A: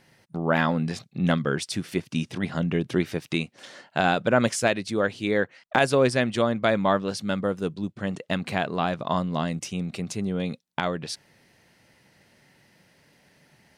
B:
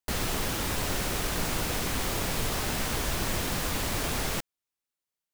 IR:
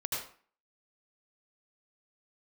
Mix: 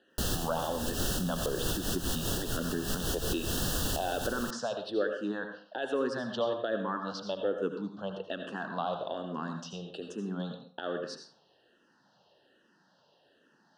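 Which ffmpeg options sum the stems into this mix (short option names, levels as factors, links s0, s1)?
-filter_complex "[0:a]acrossover=split=210 4900:gain=0.0891 1 0.0631[s0][s1][s2];[s0][s1][s2]amix=inputs=3:normalize=0,alimiter=limit=0.15:level=0:latency=1:release=100,asplit=2[s3][s4];[s4]afreqshift=-1.2[s5];[s3][s5]amix=inputs=2:normalize=1,volume=0.562,asplit=3[s6][s7][s8];[s7]volume=0.596[s9];[1:a]equalizer=f=970:w=1.5:g=-8,adelay=100,volume=1[s10];[s8]apad=whole_len=239694[s11];[s10][s11]sidechaincompress=threshold=0.00708:ratio=8:attack=6.1:release=110[s12];[2:a]atrim=start_sample=2205[s13];[s9][s13]afir=irnorm=-1:irlink=0[s14];[s6][s12][s14]amix=inputs=3:normalize=0,asuperstop=centerf=2200:order=8:qfactor=2.3"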